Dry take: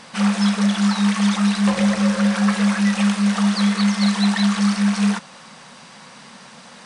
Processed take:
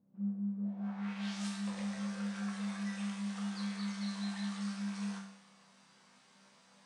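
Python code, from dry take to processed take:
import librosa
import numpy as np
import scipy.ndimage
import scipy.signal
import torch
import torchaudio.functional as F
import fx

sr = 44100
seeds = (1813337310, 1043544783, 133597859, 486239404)

y = fx.envelope_flatten(x, sr, power=0.3, at=(0.64, 1.47), fade=0.02)
y = scipy.signal.sosfilt(scipy.signal.butter(2, 59.0, 'highpass', fs=sr, output='sos'), y)
y = fx.resonator_bank(y, sr, root=36, chord='major', decay_s=0.74)
y = fx.filter_sweep_lowpass(y, sr, from_hz=270.0, to_hz=8600.0, start_s=0.57, end_s=1.49, q=1.2)
y = y * librosa.db_to_amplitude(-6.5)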